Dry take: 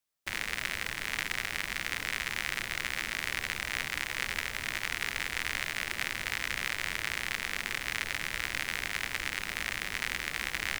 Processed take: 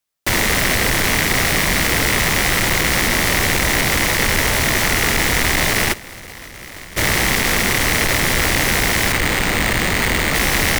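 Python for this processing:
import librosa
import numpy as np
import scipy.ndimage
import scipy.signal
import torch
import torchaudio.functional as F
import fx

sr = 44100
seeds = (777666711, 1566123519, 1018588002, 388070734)

p1 = fx.fuzz(x, sr, gain_db=49.0, gate_db=-55.0)
p2 = x + (p1 * librosa.db_to_amplitude(-8.0))
p3 = fx.over_compress(p2, sr, threshold_db=-35.0, ratio=-0.5, at=(5.92, 6.96), fade=0.02)
p4 = fx.resample_bad(p3, sr, factor=4, down='filtered', up='hold', at=(9.12, 10.35))
y = p4 * librosa.db_to_amplitude(6.0)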